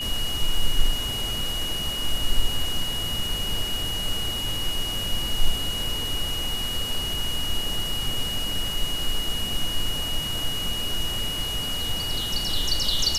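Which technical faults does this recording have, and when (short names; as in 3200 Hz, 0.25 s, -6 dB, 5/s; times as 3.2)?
tone 2900 Hz -28 dBFS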